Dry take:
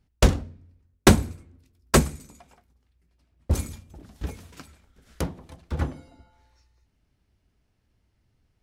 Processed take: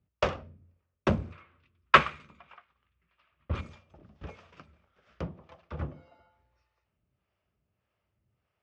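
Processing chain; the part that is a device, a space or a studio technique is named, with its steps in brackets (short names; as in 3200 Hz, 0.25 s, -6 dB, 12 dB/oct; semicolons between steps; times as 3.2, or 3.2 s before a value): guitar amplifier with harmonic tremolo (harmonic tremolo 1.7 Hz, depth 70%, crossover 410 Hz; soft clip -13.5 dBFS, distortion -13 dB; speaker cabinet 88–4500 Hz, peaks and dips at 270 Hz -8 dB, 590 Hz +7 dB, 1200 Hz +8 dB, 2600 Hz +4 dB, 4100 Hz -8 dB); 1.32–3.61 band shelf 2000 Hz +12 dB 2.3 oct; gain -3.5 dB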